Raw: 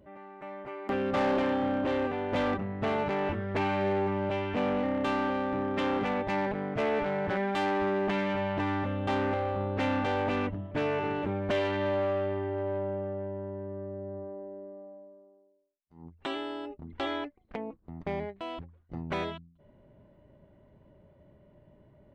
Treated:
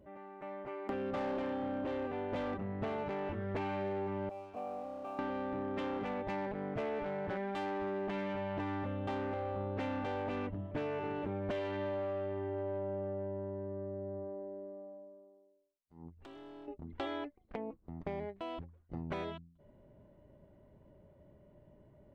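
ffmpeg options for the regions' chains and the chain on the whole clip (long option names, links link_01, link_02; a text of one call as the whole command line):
ffmpeg -i in.wav -filter_complex "[0:a]asettb=1/sr,asplit=3[link_01][link_02][link_03];[link_01]atrim=end=4.294[link_04];[link_02]atrim=start=4.29:end=5.19,asetpts=PTS-STARTPTS,afade=type=in:duration=0.004:curve=qsin,afade=type=out:start_time=0.896:duration=0.004:curve=qsin,asplit=3[link_05][link_06][link_07];[link_05]bandpass=frequency=730:width_type=q:width=8,volume=0dB[link_08];[link_06]bandpass=frequency=1090:width_type=q:width=8,volume=-6dB[link_09];[link_07]bandpass=frequency=2440:width_type=q:width=8,volume=-9dB[link_10];[link_08][link_09][link_10]amix=inputs=3:normalize=0,aemphasis=mode=reproduction:type=riaa,aeval=exprs='sgn(val(0))*max(abs(val(0))-0.00126,0)':channel_layout=same[link_11];[link_03]atrim=start=5.186[link_12];[link_04][link_11]acrossfade=duration=0.004:curve1=hsin:curve2=qsin[link_13];[link_13][link_12]acrossfade=duration=0.004:curve1=qsin:curve2=hsin,asettb=1/sr,asplit=3[link_14][link_15][link_16];[link_14]atrim=end=16.174[link_17];[link_15]atrim=start=16.17:end=16.68,asetpts=PTS-STARTPTS,afade=type=in:duration=0.004:curve=qsin,afade=type=out:start_time=0.506:duration=0.004:curve=qsin,lowshelf=frequency=480:gain=6.5,acompressor=threshold=-43dB:ratio=20:attack=3.2:release=140:knee=1:detection=peak,aeval=exprs='clip(val(0),-1,0.00422)':channel_layout=same[link_18];[link_16]atrim=start=16.676[link_19];[link_17][link_18]acrossfade=duration=0.004:curve1=hsin:curve2=qsin[link_20];[link_20][link_19]acrossfade=duration=0.004:curve1=qsin:curve2=hsin,equalizer=frequency=470:width=0.5:gain=4,acompressor=threshold=-29dB:ratio=6,lowshelf=frequency=94:gain=5.5,volume=-6dB" out.wav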